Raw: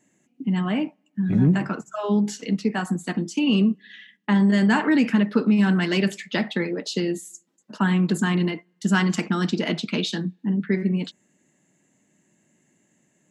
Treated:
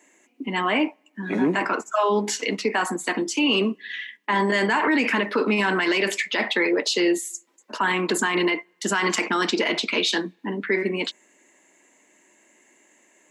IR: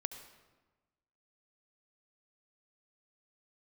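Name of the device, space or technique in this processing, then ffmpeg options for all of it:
laptop speaker: -af "highpass=f=320:w=0.5412,highpass=f=320:w=1.3066,equalizer=f=1k:t=o:w=0.28:g=7.5,equalizer=f=2.2k:t=o:w=0.5:g=6.5,alimiter=limit=-20.5dB:level=0:latency=1:release=31,volume=8dB"

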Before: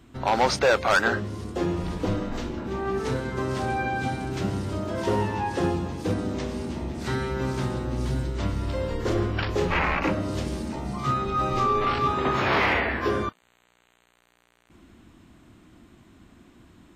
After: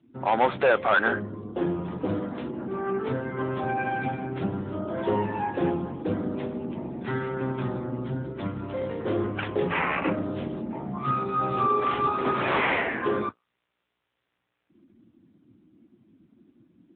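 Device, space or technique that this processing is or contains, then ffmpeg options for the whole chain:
mobile call with aggressive noise cancelling: -af "highpass=120,afftdn=nr=16:nf=-44" -ar 8000 -c:a libopencore_amrnb -b:a 10200

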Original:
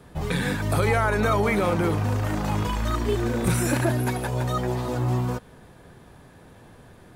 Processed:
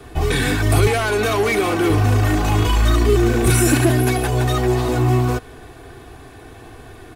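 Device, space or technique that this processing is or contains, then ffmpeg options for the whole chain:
one-band saturation: -filter_complex "[0:a]aecho=1:1:2.7:0.79,asettb=1/sr,asplit=3[a][b][c];[a]atrim=end=0.874[d];[b]atrim=start=0.87:end=1.9,asetpts=PTS-STARTPTS,afade=t=in:d=0.004:c=qsin,afade=t=out:st=1.026:d=0.004:c=qsin,highpass=f=270:p=1[e];[c]atrim=start=1.896[f];[d][e]acrossfade=d=0.004:c1=hsin:c2=qsin[g];[g][f]acrossfade=d=0.004:c1=qsin:c2=hsin,acrossover=split=350|4500[h][i][j];[i]asoftclip=type=tanh:threshold=-28dB[k];[h][k][j]amix=inputs=3:normalize=0,equalizer=f=2.6k:w=2.1:g=3,volume=8dB"

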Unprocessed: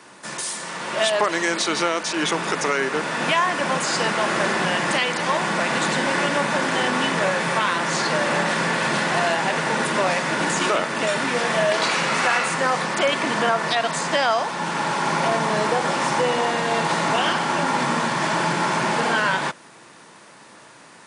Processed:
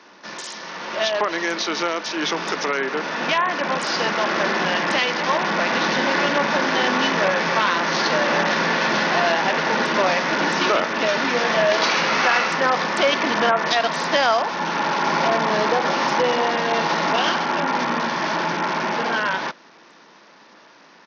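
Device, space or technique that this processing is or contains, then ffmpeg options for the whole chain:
Bluetooth headset: -filter_complex "[0:a]asettb=1/sr,asplit=3[a][b][c];[a]atrim=end=2.234[d];[b]atrim=start=2.23:end=2.66,asetpts=PTS-STARTPTS,afade=t=in:d=0.004:c=qsin,afade=t=out:st=0.426:d=0.004:c=qsin,equalizer=f=5.5k:t=o:w=0.91:g=3.5[e];[c]atrim=start=2.656[f];[d][e]acrossfade=d=0.004:c1=hsin:c2=qsin[g];[g][f]acrossfade=d=0.004:c1=qsin:c2=hsin,highpass=f=180:w=0.5412,highpass=f=180:w=1.3066,dynaudnorm=f=500:g=17:m=4.5dB,aresample=16000,aresample=44100,volume=-1.5dB" -ar 48000 -c:a sbc -b:a 64k

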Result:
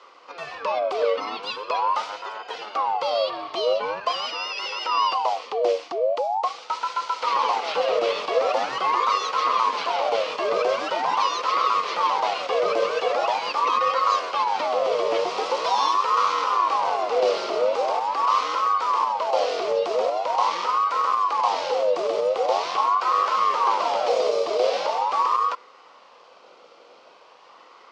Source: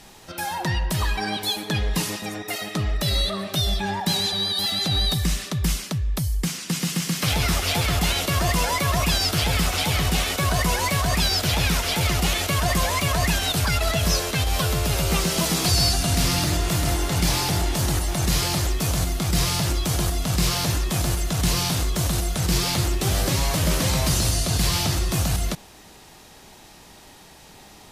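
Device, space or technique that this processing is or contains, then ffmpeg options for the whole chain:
voice changer toy: -af "aeval=exprs='val(0)*sin(2*PI*850*n/s+850*0.4/0.43*sin(2*PI*0.43*n/s))':c=same,highpass=440,equalizer=f=500:t=q:w=4:g=10,equalizer=f=1.1k:t=q:w=4:g=7,equalizer=f=1.7k:t=q:w=4:g=-9,equalizer=f=3.7k:t=q:w=4:g=-5,lowpass=f=4.5k:w=0.5412,lowpass=f=4.5k:w=1.3066"

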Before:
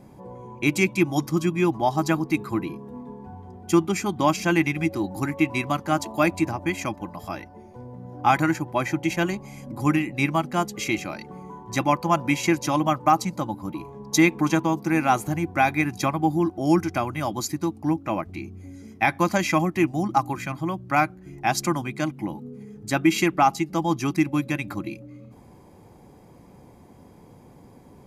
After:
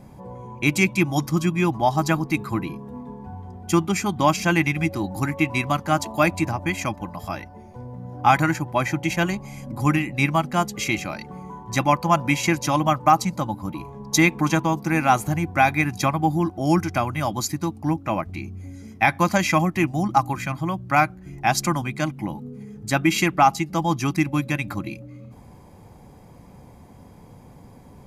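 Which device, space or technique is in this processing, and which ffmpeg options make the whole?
low shelf boost with a cut just above: -af "lowshelf=f=87:g=6,equalizer=f=350:t=o:w=0.77:g=-5.5,volume=3dB"

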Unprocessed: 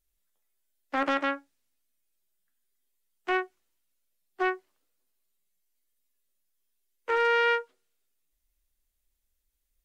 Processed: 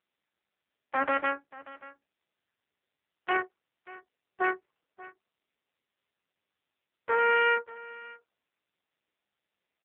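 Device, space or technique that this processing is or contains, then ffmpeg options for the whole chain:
satellite phone: -af "highpass=350,lowpass=3.1k,aecho=1:1:584:0.119,volume=1.5dB" -ar 8000 -c:a libopencore_amrnb -b:a 5900

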